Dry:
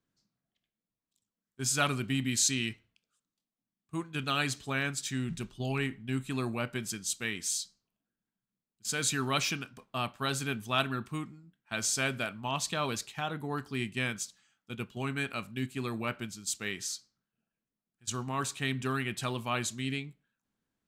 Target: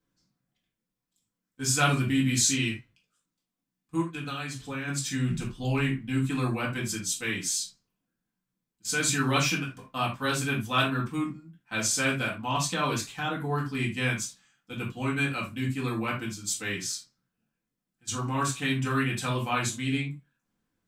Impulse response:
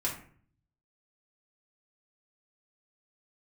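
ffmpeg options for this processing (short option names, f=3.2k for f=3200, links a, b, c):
-filter_complex "[0:a]asplit=3[a][b][c];[a]afade=t=out:st=4.01:d=0.02[d];[b]acompressor=threshold=-37dB:ratio=6,afade=t=in:st=4.01:d=0.02,afade=t=out:st=4.87:d=0.02[e];[c]afade=t=in:st=4.87:d=0.02[f];[d][e][f]amix=inputs=3:normalize=0[g];[1:a]atrim=start_sample=2205,afade=t=out:st=0.14:d=0.01,atrim=end_sample=6615[h];[g][h]afir=irnorm=-1:irlink=0"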